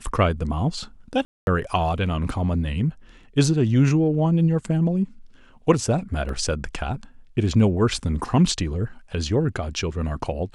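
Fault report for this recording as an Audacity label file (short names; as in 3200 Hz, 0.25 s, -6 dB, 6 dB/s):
1.250000	1.470000	gap 0.221 s
6.290000	6.290000	gap 2 ms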